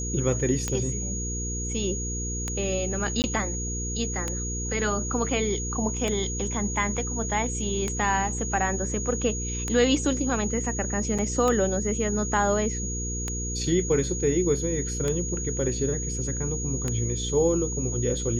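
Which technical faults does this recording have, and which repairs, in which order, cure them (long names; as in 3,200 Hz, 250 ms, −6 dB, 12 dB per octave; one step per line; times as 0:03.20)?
mains hum 60 Hz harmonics 8 −32 dBFS
scratch tick 33 1/3 rpm −13 dBFS
whistle 6,700 Hz −32 dBFS
0:03.22–0:03.24: drop-out 19 ms
0:11.18–0:11.19: drop-out 5.7 ms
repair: click removal
notch filter 6,700 Hz, Q 30
hum removal 60 Hz, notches 8
repair the gap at 0:03.22, 19 ms
repair the gap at 0:11.18, 5.7 ms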